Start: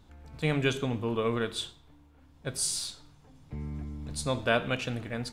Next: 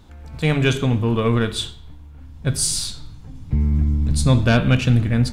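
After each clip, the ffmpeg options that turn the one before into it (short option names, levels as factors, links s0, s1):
-af "aeval=exprs='0.299*sin(PI/2*1.58*val(0)/0.299)':c=same,asubboost=boost=5:cutoff=240,bandreject=f=145.3:t=h:w=4,bandreject=f=290.6:t=h:w=4,bandreject=f=435.9:t=h:w=4,bandreject=f=581.2:t=h:w=4,bandreject=f=726.5:t=h:w=4,bandreject=f=871.8:t=h:w=4,bandreject=f=1017.1:t=h:w=4,bandreject=f=1162.4:t=h:w=4,bandreject=f=1307.7:t=h:w=4,bandreject=f=1453:t=h:w=4,bandreject=f=1598.3:t=h:w=4,bandreject=f=1743.6:t=h:w=4,bandreject=f=1888.9:t=h:w=4,bandreject=f=2034.2:t=h:w=4,bandreject=f=2179.5:t=h:w=4,bandreject=f=2324.8:t=h:w=4,bandreject=f=2470.1:t=h:w=4,bandreject=f=2615.4:t=h:w=4,bandreject=f=2760.7:t=h:w=4,bandreject=f=2906:t=h:w=4,bandreject=f=3051.3:t=h:w=4,bandreject=f=3196.6:t=h:w=4,bandreject=f=3341.9:t=h:w=4,bandreject=f=3487.2:t=h:w=4,bandreject=f=3632.5:t=h:w=4,bandreject=f=3777.8:t=h:w=4,bandreject=f=3923.1:t=h:w=4,bandreject=f=4068.4:t=h:w=4,bandreject=f=4213.7:t=h:w=4,bandreject=f=4359:t=h:w=4,bandreject=f=4504.3:t=h:w=4,bandreject=f=4649.6:t=h:w=4,volume=1.19"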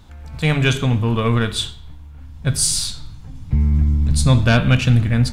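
-af "equalizer=f=360:t=o:w=1.4:g=-5.5,volume=1.41"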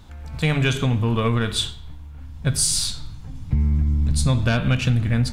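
-af "acompressor=threshold=0.158:ratio=4"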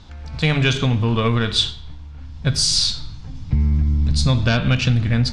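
-af "lowpass=f=5100:t=q:w=1.9,volume=1.26"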